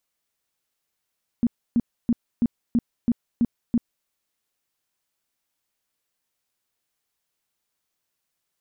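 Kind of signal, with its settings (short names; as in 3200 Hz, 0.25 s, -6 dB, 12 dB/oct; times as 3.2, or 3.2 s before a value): tone bursts 236 Hz, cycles 9, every 0.33 s, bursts 8, -15.5 dBFS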